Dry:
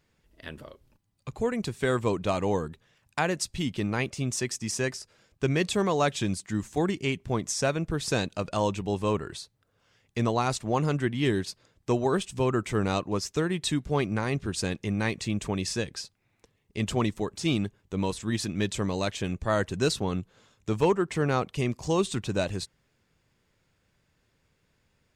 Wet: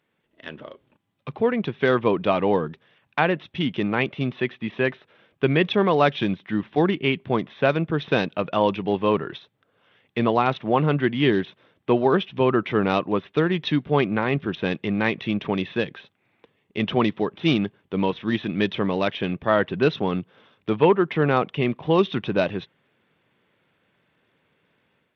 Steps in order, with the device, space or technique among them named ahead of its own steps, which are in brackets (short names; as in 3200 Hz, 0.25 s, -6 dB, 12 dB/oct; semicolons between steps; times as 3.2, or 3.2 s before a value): dynamic EQ 150 Hz, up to +4 dB, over -45 dBFS, Q 2.8; Bluetooth headset (HPF 190 Hz 12 dB/oct; AGC gain up to 7 dB; downsampling 8000 Hz; SBC 64 kbps 32000 Hz)